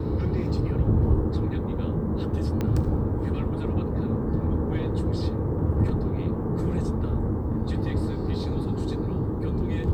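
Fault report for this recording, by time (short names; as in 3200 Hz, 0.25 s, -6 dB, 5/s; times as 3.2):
2.61 pop -15 dBFS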